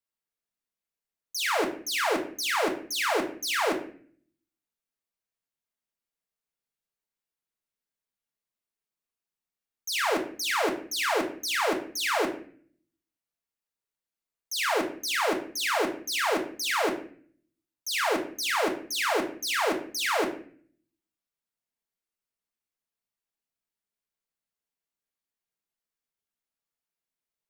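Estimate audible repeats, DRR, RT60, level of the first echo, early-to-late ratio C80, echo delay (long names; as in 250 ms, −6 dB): no echo audible, 2.0 dB, 0.50 s, no echo audible, 13.5 dB, no echo audible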